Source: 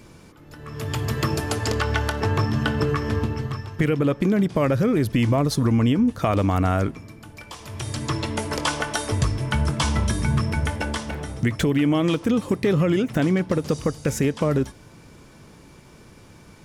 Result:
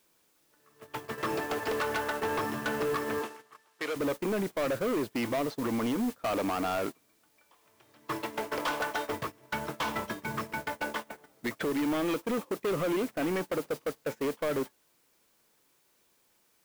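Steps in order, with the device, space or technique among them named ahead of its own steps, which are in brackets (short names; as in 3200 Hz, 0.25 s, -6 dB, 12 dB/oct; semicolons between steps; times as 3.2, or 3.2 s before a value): aircraft radio (BPF 370–2500 Hz; hard clip -25.5 dBFS, distortion -8 dB; white noise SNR 15 dB; gate -32 dBFS, range -22 dB); 3.22–3.96 weighting filter A; gain -1 dB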